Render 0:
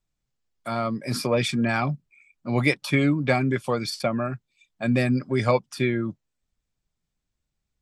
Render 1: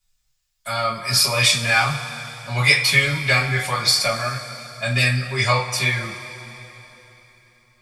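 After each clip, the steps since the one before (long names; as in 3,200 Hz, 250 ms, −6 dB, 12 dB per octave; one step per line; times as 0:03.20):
guitar amp tone stack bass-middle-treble 10-0-10
coupled-rooms reverb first 0.28 s, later 3.6 s, from −20 dB, DRR −6 dB
level +8.5 dB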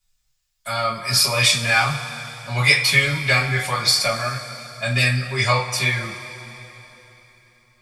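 no processing that can be heard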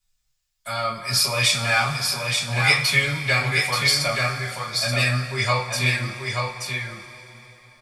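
single-tap delay 880 ms −4.5 dB
level −3 dB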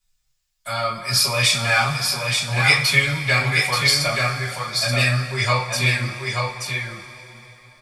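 flanger 1.9 Hz, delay 5.1 ms, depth 2.6 ms, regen −54%
level +6 dB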